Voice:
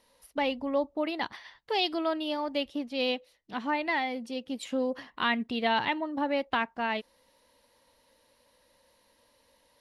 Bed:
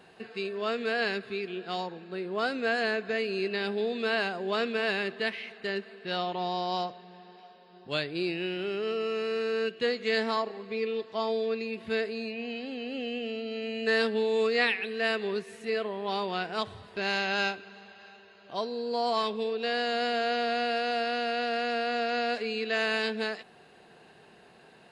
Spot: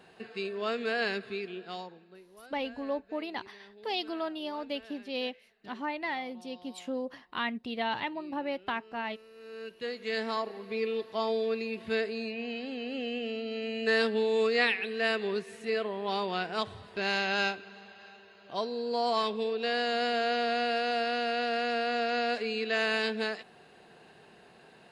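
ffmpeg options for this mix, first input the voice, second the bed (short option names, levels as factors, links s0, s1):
-filter_complex "[0:a]adelay=2150,volume=0.562[s0];[1:a]volume=11.9,afade=t=out:st=1.27:d=0.99:silence=0.0794328,afade=t=in:st=9.34:d=1.45:silence=0.0707946[s1];[s0][s1]amix=inputs=2:normalize=0"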